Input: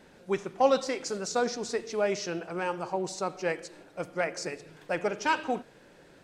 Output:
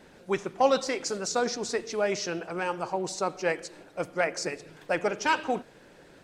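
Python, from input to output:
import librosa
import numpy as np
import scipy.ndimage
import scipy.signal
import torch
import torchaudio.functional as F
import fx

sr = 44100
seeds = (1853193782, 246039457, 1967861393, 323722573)

y = fx.hpss(x, sr, part='percussive', gain_db=4)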